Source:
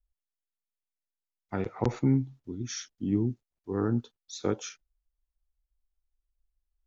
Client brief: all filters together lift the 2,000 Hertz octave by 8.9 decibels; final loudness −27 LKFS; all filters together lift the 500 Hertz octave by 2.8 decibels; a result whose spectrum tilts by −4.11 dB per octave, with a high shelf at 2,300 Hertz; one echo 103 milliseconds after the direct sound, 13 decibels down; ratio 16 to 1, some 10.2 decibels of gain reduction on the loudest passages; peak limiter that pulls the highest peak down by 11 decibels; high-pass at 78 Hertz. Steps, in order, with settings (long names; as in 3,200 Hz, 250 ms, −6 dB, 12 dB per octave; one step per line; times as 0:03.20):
high-pass filter 78 Hz
parametric band 500 Hz +3 dB
parametric band 2,000 Hz +8 dB
high-shelf EQ 2,300 Hz +6.5 dB
downward compressor 16 to 1, threshold −29 dBFS
brickwall limiter −27 dBFS
single-tap delay 103 ms −13 dB
level +12 dB